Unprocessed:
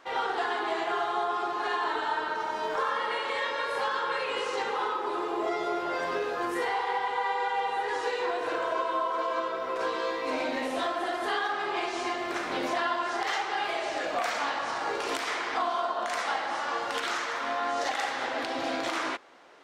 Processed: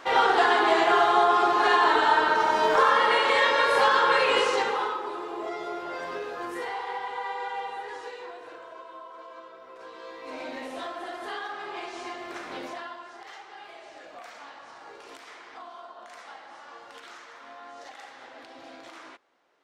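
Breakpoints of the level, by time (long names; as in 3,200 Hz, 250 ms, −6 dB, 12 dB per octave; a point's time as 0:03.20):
0:04.37 +9 dB
0:05.18 −4 dB
0:07.57 −4 dB
0:08.66 −15 dB
0:09.83 −15 dB
0:10.48 −6 dB
0:12.58 −6 dB
0:13.13 −15 dB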